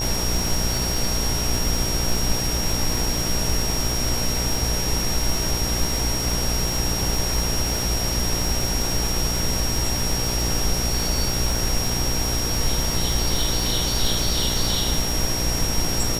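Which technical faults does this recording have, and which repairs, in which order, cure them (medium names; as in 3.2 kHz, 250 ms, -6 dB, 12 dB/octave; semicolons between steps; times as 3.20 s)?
buzz 60 Hz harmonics 16 -28 dBFS
crackle 59 per s -26 dBFS
whine 5.6 kHz -26 dBFS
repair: de-click; de-hum 60 Hz, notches 16; band-stop 5.6 kHz, Q 30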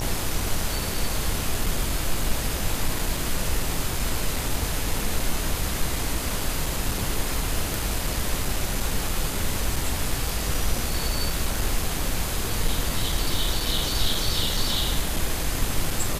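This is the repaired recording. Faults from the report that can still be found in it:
nothing left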